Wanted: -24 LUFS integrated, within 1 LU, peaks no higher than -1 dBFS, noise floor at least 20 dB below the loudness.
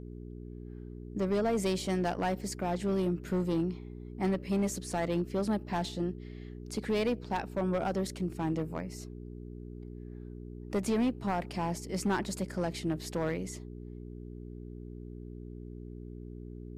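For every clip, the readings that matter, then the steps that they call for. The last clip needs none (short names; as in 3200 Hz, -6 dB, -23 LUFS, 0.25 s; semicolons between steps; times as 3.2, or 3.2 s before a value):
clipped 1.2%; flat tops at -24.0 dBFS; hum 60 Hz; harmonics up to 420 Hz; hum level -41 dBFS; loudness -33.0 LUFS; peak -24.0 dBFS; loudness target -24.0 LUFS
-> clip repair -24 dBFS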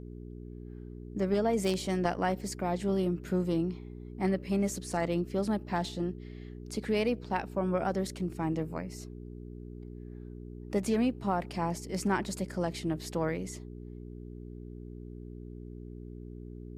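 clipped 0.0%; hum 60 Hz; harmonics up to 420 Hz; hum level -41 dBFS
-> de-hum 60 Hz, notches 7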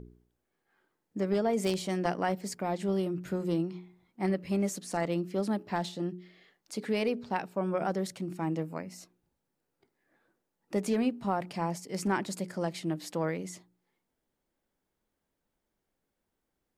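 hum none; loudness -32.5 LUFS; peak -15.0 dBFS; loudness target -24.0 LUFS
-> gain +8.5 dB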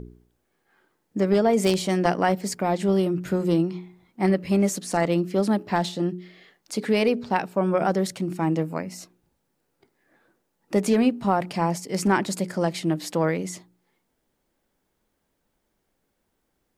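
loudness -24.0 LUFS; peak -6.5 dBFS; noise floor -75 dBFS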